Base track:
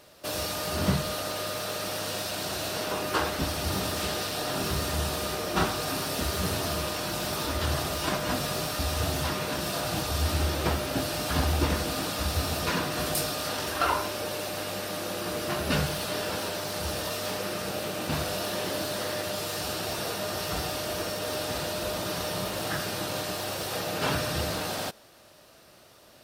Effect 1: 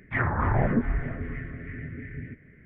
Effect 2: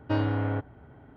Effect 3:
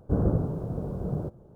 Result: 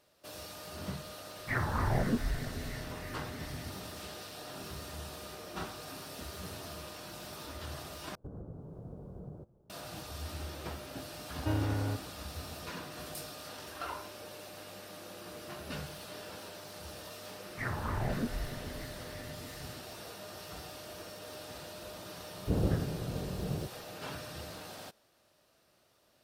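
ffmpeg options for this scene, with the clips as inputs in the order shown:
-filter_complex "[1:a]asplit=2[s0][s1];[3:a]asplit=2[s2][s3];[0:a]volume=0.188[s4];[s2]alimiter=limit=0.075:level=0:latency=1:release=281[s5];[2:a]lowshelf=f=67:g=11[s6];[s4]asplit=2[s7][s8];[s7]atrim=end=8.154[s9];[s5]atrim=end=1.55,asetpts=PTS-STARTPTS,volume=0.211[s10];[s8]atrim=start=9.696[s11];[s0]atrim=end=2.65,asetpts=PTS-STARTPTS,volume=0.473,afade=t=in:d=0.004:c=hsin,afade=t=out:st=2.646:d=0.004:c=hsin,adelay=1360[s12];[s6]atrim=end=1.16,asetpts=PTS-STARTPTS,volume=0.422,afade=t=in:d=0.004:c=hsin,afade=t=out:st=1.156:d=0.004:c=hsin,adelay=11360[s13];[s1]atrim=end=2.65,asetpts=PTS-STARTPTS,volume=0.299,afade=t=in:d=0.004:c=hsin,afade=t=out:st=2.646:d=0.004:c=hsin,adelay=17460[s14];[s3]atrim=end=1.55,asetpts=PTS-STARTPTS,volume=0.531,afade=t=in:d=0.004:c=hsin,afade=t=out:st=1.546:d=0.004:c=hsin,adelay=22380[s15];[s9][s10]acrossfade=d=0.004:c1=hsin:c2=hsin[s16];[s16][s11]acrossfade=d=0.004:c1=hsin:c2=hsin[s17];[s17][s12][s13][s14][s15]amix=inputs=5:normalize=0"

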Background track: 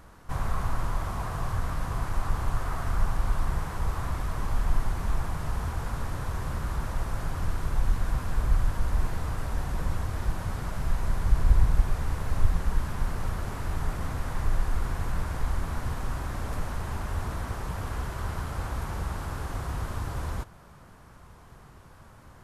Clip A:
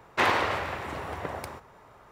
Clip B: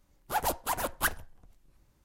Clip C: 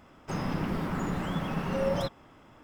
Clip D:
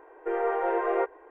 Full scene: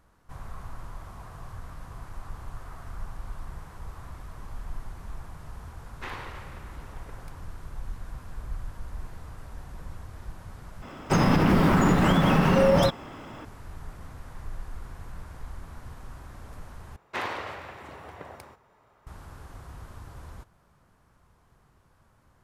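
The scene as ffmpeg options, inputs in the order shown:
-filter_complex "[1:a]asplit=2[s0][s1];[0:a]volume=0.266[s2];[s0]equalizer=f=640:t=o:w=0.34:g=-8.5[s3];[3:a]alimiter=level_in=15:limit=0.891:release=50:level=0:latency=1[s4];[s2]asplit=3[s5][s6][s7];[s5]atrim=end=10.824[s8];[s4]atrim=end=2.63,asetpts=PTS-STARTPTS,volume=0.299[s9];[s6]atrim=start=13.446:end=16.964[s10];[s1]atrim=end=2.11,asetpts=PTS-STARTPTS,volume=0.376[s11];[s7]atrim=start=19.066[s12];[s3]atrim=end=2.11,asetpts=PTS-STARTPTS,volume=0.188,afade=t=in:d=0.004:c=hsin,afade=t=out:st=2.106:d=0.004:c=hsin,adelay=5840[s13];[s8][s9]acrossfade=d=0.004:c1=hsin:c2=hsin[s14];[s14][s10]acrossfade=d=0.004:c1=hsin:c2=hsin[s15];[s15][s11]acrossfade=d=0.004:c1=hsin:c2=hsin[s16];[s16][s12]acrossfade=d=0.004:c1=hsin:c2=hsin[s17];[s17][s13]amix=inputs=2:normalize=0"

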